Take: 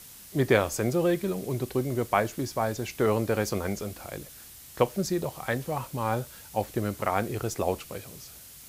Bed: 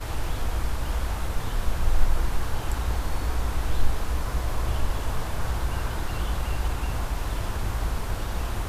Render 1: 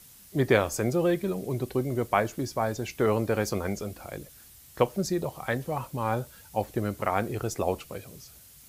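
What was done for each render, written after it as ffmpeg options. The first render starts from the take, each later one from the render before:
-af "afftdn=nr=6:nf=-48"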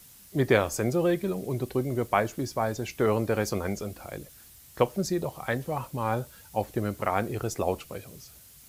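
-af "acrusher=bits=10:mix=0:aa=0.000001"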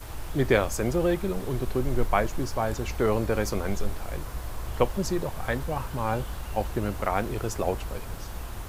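-filter_complex "[1:a]volume=-8dB[a];[0:a][a]amix=inputs=2:normalize=0"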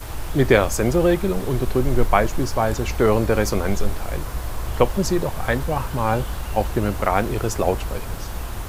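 -af "volume=7dB,alimiter=limit=-2dB:level=0:latency=1"

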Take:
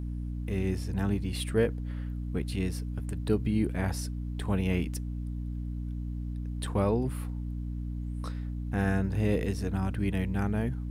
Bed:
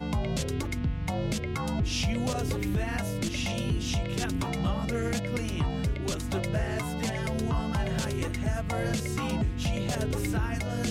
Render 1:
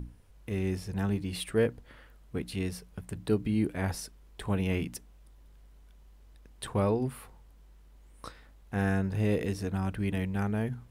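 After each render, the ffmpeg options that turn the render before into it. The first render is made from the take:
-af "bandreject=f=60:t=h:w=6,bandreject=f=120:t=h:w=6,bandreject=f=180:t=h:w=6,bandreject=f=240:t=h:w=6,bandreject=f=300:t=h:w=6"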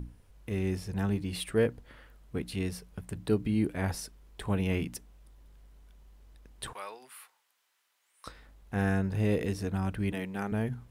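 -filter_complex "[0:a]asettb=1/sr,asplit=3[a][b][c];[a]atrim=end=6.734[d];[b]atrim=start=6.73:end=8.27,asetpts=PTS-STARTPTS,afade=t=in:d=0.004:c=qsin,afade=t=out:st=1.536:d=0.004:c=qsin,highpass=1.4k[e];[c]atrim=start=8.266[f];[d][e]acrossfade=d=0.004:c1=hsin:c2=qsin[g];[g][f]acrossfade=d=0.004:c1=qsin:c2=hsin,asettb=1/sr,asplit=3[h][i][j];[h]atrim=end=10.124[k];[i]atrim=start=10.12:end=10.52,asetpts=PTS-STARTPTS,afade=t=in:d=0.004:c=qsin,afade=t=out:st=0.396:d=0.004:c=qsin,highpass=220[l];[j]atrim=start=10.516[m];[k][l]acrossfade=d=0.004:c1=hsin:c2=qsin[n];[n][m]acrossfade=d=0.004:c1=qsin:c2=hsin"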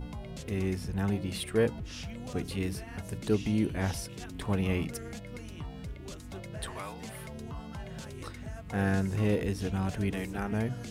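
-filter_complex "[1:a]volume=-12.5dB[a];[0:a][a]amix=inputs=2:normalize=0"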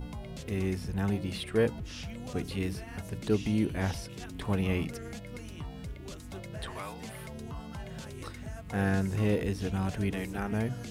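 -filter_complex "[0:a]acrossover=split=5100[a][b];[b]acompressor=threshold=-53dB:ratio=4:attack=1:release=60[c];[a][c]amix=inputs=2:normalize=0,highshelf=f=6.9k:g=5"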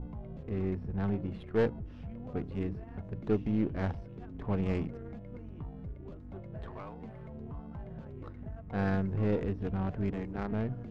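-af "aeval=exprs='if(lt(val(0),0),0.708*val(0),val(0))':c=same,adynamicsmooth=sensitivity=2:basefreq=820"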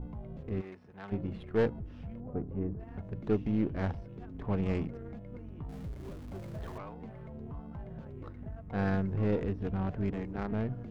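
-filter_complex "[0:a]asplit=3[a][b][c];[a]afade=t=out:st=0.6:d=0.02[d];[b]highpass=f=1.3k:p=1,afade=t=in:st=0.6:d=0.02,afade=t=out:st=1.11:d=0.02[e];[c]afade=t=in:st=1.11:d=0.02[f];[d][e][f]amix=inputs=3:normalize=0,asettb=1/sr,asplit=3[g][h][i];[g]atrim=end=2.204[j];[h]atrim=start=2.2:end=2.8,asetpts=PTS-STARTPTS,afade=t=in:d=0.004:c=qsin,afade=t=out:st=0.596:d=0.004:c=qsin,lowpass=1k[k];[i]atrim=start=2.796[l];[j][k]acrossfade=d=0.004:c1=hsin:c2=qsin[m];[m][l]acrossfade=d=0.004:c1=qsin:c2=hsin,asettb=1/sr,asplit=3[n][o][p];[n]atrim=end=5.694[q];[o]atrim=start=5.69:end=6.78,asetpts=PTS-STARTPTS,afade=t=in:d=0.004:c=qsin,afade=t=out:st=1.086:d=0.004:c=qsin,aeval=exprs='val(0)+0.5*0.00447*sgn(val(0))':c=same[r];[p]atrim=start=6.776[s];[q][r]acrossfade=d=0.004:c1=hsin:c2=qsin[t];[t][s]acrossfade=d=0.004:c1=qsin:c2=hsin"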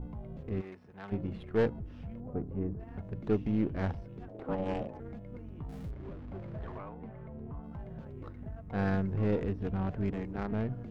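-filter_complex "[0:a]asettb=1/sr,asplit=3[a][b][c];[a]atrim=end=4.284[d];[b]atrim=start=4.28:end=5,asetpts=PTS-STARTPTS,afade=t=in:d=0.004:c=qsin,afade=t=out:st=0.716:d=0.004:c=qsin,aeval=exprs='val(0)*sin(2*PI*380*n/s)':c=same[e];[c]atrim=start=4.996[f];[d][e]acrossfade=d=0.004:c1=hsin:c2=qsin[g];[g][f]acrossfade=d=0.004:c1=qsin:c2=hsin,asettb=1/sr,asplit=3[h][i][j];[h]atrim=end=5.914[k];[i]atrim=start=5.91:end=7.64,asetpts=PTS-STARTPTS,afade=t=in:d=0.004:c=qsin,afade=t=out:st=1.726:d=0.004:c=qsin,lowpass=2.4k[l];[j]atrim=start=7.636[m];[k][l]acrossfade=d=0.004:c1=hsin:c2=qsin[n];[n][m]acrossfade=d=0.004:c1=qsin:c2=hsin"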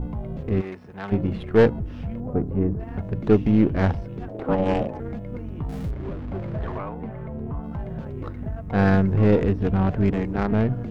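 -af "volume=12dB"

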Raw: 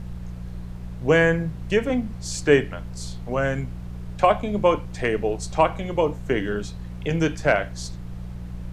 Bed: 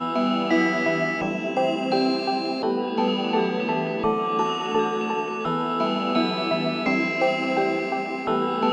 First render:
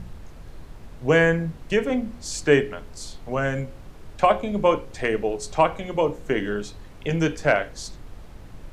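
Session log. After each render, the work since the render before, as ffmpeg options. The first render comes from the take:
-af "bandreject=f=60:t=h:w=4,bandreject=f=120:t=h:w=4,bandreject=f=180:t=h:w=4,bandreject=f=240:t=h:w=4,bandreject=f=300:t=h:w=4,bandreject=f=360:t=h:w=4,bandreject=f=420:t=h:w=4,bandreject=f=480:t=h:w=4,bandreject=f=540:t=h:w=4"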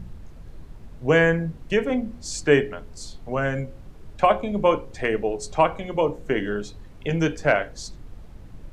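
-af "afftdn=nr=6:nf=-43"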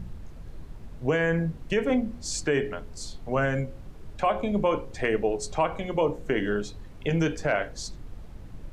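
-af "alimiter=limit=-14dB:level=0:latency=1:release=81"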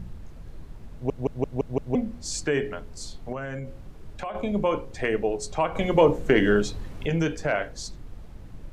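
-filter_complex "[0:a]asettb=1/sr,asplit=3[a][b][c];[a]atrim=end=3.324[d];[b]atrim=start=3.32:end=4.35,asetpts=PTS-STARTPTS,afade=t=in:d=0.004:c=qsin,afade=t=out:st=1.026:d=0.004:c=qsin,acompressor=threshold=-29dB:ratio=6:attack=3.2:release=140:knee=1:detection=peak[e];[c]atrim=start=4.346[f];[d][e]acrossfade=d=0.004:c1=hsin:c2=qsin[g];[g][f]acrossfade=d=0.004:c1=qsin:c2=hsin,asettb=1/sr,asplit=3[h][i][j];[h]atrim=end=5.754[k];[i]atrim=start=5.75:end=7.06,asetpts=PTS-STARTPTS,afade=t=in:d=0.004:c=qsin,afade=t=out:st=1.306:d=0.004:c=qsin,acontrast=84[l];[j]atrim=start=7.056[m];[k][l]acrossfade=d=0.004:c1=hsin:c2=qsin[n];[n][m]acrossfade=d=0.004:c1=qsin:c2=hsin,asplit=7[o][p][q][r][s][t][u];[o]atrim=end=1.102[v];[p]atrim=start=0.928:end=1.102[w];[q]atrim=start=0.928:end=1.102[x];[r]atrim=start=0.928:end=1.102[y];[s]atrim=start=0.928:end=1.102[z];[t]atrim=start=0.928:end=1.102[aa];[u]atrim=start=1.948[ab];[v][w]acrossfade=d=0.004:c1=hsin:c2=hsin[ac];[ac][x]acrossfade=d=0.004:c1=hsin:c2=hsin[ad];[ad][y]acrossfade=d=0.004:c1=hsin:c2=hsin[ae];[ae][z]acrossfade=d=0.004:c1=hsin:c2=hsin[af];[af][aa]acrossfade=d=0.004:c1=hsin:c2=hsin[ag];[ag][ab]acrossfade=d=0.004:c1=hsin:c2=hsin"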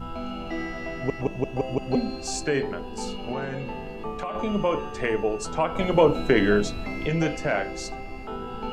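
-filter_complex "[1:a]volume=-11.5dB[a];[0:a][a]amix=inputs=2:normalize=0"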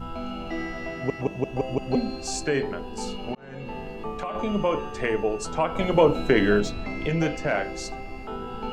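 -filter_complex "[0:a]asettb=1/sr,asplit=3[a][b][c];[a]atrim=end=0.914[d];[b]atrim=start=0.91:end=1.51,asetpts=PTS-STARTPTS,afade=t=in:d=0.004:c=qsin,afade=t=out:st=0.596:d=0.004:c=qsin,highpass=66[e];[c]atrim=start=1.506[f];[d][e]acrossfade=d=0.004:c1=hsin:c2=qsin[g];[g][f]acrossfade=d=0.004:c1=qsin:c2=hsin,asettb=1/sr,asplit=3[h][i][j];[h]atrim=end=6.604[k];[i]atrim=start=6.6:end=7.57,asetpts=PTS-STARTPTS,afade=t=in:d=0.004:c=qsin,afade=t=out:st=0.966:d=0.004:c=qsin,adynamicsmooth=sensitivity=6:basefreq=7.8k[l];[j]atrim=start=7.566[m];[k][l]acrossfade=d=0.004:c1=hsin:c2=qsin[n];[n][m]acrossfade=d=0.004:c1=qsin:c2=hsin,asplit=2[o][p];[o]atrim=end=3.35,asetpts=PTS-STARTPTS,afade=t=out:st=3.346:d=0.004:c=hsin[q];[p]atrim=start=3.35,asetpts=PTS-STARTPTS,afade=t=in:d=0.42[r];[q][r]concat=n=2:v=0:a=1"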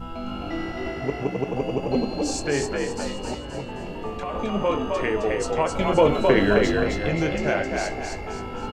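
-filter_complex "[0:a]asplit=2[a][b];[b]adelay=21,volume=-12dB[c];[a][c]amix=inputs=2:normalize=0,asplit=7[d][e][f][g][h][i][j];[e]adelay=263,afreqshift=51,volume=-3.5dB[k];[f]adelay=526,afreqshift=102,volume=-10.6dB[l];[g]adelay=789,afreqshift=153,volume=-17.8dB[m];[h]adelay=1052,afreqshift=204,volume=-24.9dB[n];[i]adelay=1315,afreqshift=255,volume=-32dB[o];[j]adelay=1578,afreqshift=306,volume=-39.2dB[p];[d][k][l][m][n][o][p]amix=inputs=7:normalize=0"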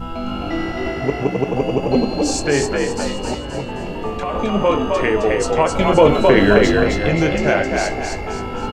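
-af "volume=7dB,alimiter=limit=-1dB:level=0:latency=1"

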